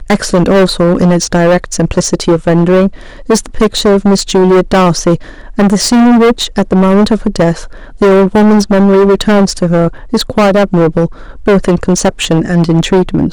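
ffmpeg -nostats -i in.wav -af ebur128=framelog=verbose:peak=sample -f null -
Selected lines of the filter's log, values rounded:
Integrated loudness:
  I:          -9.5 LUFS
  Threshold: -19.7 LUFS
Loudness range:
  LRA:         1.8 LU
  Threshold: -29.6 LUFS
  LRA low:   -10.5 LUFS
  LRA high:   -8.7 LUFS
Sample peak:
  Peak:       -3.7 dBFS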